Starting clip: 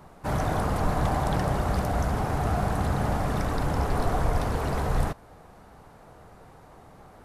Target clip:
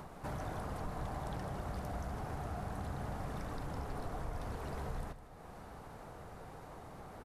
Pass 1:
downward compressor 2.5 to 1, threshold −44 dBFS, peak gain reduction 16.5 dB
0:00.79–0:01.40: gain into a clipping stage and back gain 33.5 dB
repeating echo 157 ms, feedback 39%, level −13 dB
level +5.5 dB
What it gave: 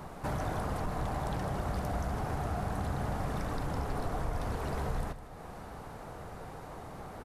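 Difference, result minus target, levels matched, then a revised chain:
downward compressor: peak gain reduction −7 dB
downward compressor 2.5 to 1, threshold −55.5 dBFS, peak gain reduction 23.5 dB
0:00.79–0:01.40: gain into a clipping stage and back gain 33.5 dB
repeating echo 157 ms, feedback 39%, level −13 dB
level +5.5 dB

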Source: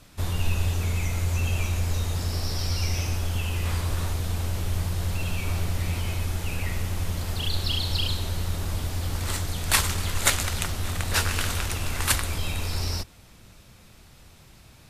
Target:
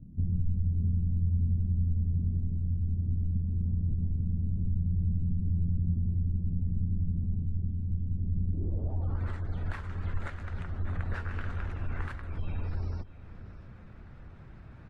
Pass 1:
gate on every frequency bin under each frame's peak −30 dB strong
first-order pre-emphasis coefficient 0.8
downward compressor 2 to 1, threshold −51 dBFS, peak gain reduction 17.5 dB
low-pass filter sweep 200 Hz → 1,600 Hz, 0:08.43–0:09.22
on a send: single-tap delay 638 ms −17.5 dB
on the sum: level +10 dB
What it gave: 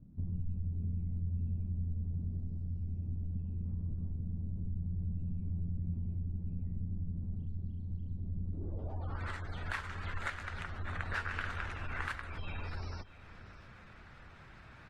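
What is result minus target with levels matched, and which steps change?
1,000 Hz band +10.5 dB
add after downward compressor: tilt shelving filter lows +8.5 dB, about 710 Hz

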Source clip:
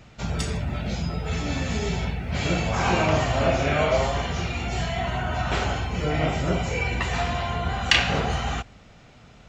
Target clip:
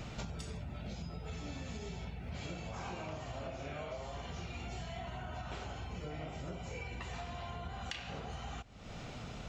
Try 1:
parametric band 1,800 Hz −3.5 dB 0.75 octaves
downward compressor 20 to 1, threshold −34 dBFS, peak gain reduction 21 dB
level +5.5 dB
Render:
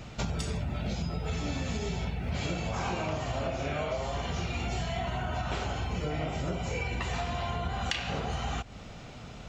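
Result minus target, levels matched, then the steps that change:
downward compressor: peak gain reduction −10.5 dB
change: downward compressor 20 to 1, threshold −45 dBFS, peak gain reduction 31.5 dB

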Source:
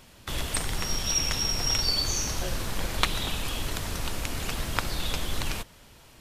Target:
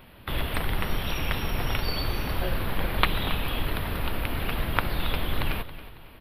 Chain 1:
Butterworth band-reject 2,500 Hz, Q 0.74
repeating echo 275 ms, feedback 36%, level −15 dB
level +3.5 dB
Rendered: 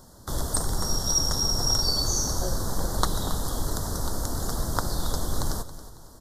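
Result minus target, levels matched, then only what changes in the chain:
8,000 Hz band +16.0 dB
change: Butterworth band-reject 6,800 Hz, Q 0.74

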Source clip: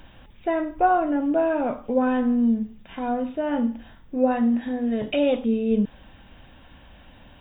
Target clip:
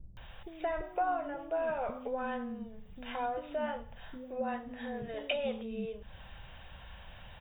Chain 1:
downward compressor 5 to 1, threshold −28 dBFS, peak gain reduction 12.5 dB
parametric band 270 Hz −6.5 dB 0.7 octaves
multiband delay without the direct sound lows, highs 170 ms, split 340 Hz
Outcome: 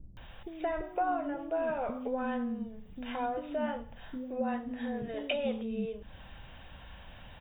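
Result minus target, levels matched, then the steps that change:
250 Hz band +4.0 dB
change: parametric band 270 Hz −15 dB 0.7 octaves

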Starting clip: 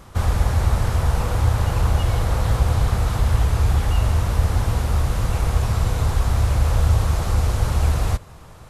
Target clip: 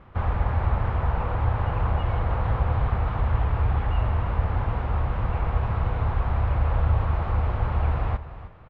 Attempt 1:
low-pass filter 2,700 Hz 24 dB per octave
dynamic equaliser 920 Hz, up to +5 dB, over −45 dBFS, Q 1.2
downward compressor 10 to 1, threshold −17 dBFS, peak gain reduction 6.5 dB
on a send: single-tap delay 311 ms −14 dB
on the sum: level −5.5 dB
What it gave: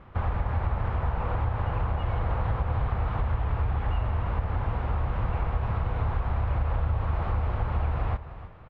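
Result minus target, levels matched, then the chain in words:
downward compressor: peak gain reduction +6.5 dB
low-pass filter 2,700 Hz 24 dB per octave
dynamic equaliser 920 Hz, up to +5 dB, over −45 dBFS, Q 1.2
on a send: single-tap delay 311 ms −14 dB
on the sum: level −5.5 dB

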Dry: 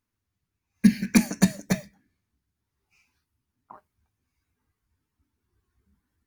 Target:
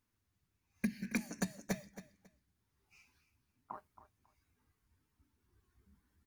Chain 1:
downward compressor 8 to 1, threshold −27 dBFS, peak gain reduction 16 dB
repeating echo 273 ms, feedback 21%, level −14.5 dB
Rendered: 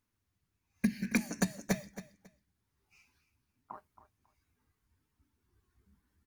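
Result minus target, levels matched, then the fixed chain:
downward compressor: peak gain reduction −6 dB
downward compressor 8 to 1, threshold −34 dBFS, peak gain reduction 22 dB
repeating echo 273 ms, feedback 21%, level −14.5 dB

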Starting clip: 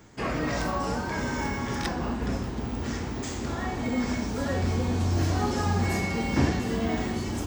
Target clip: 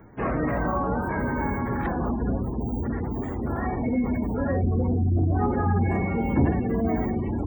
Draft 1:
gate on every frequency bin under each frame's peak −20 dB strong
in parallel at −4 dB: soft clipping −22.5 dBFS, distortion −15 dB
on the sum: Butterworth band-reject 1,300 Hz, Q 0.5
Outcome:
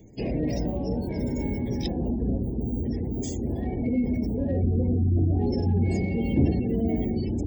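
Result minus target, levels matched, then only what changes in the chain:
4,000 Hz band +19.5 dB
change: Butterworth band-reject 5,200 Hz, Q 0.5

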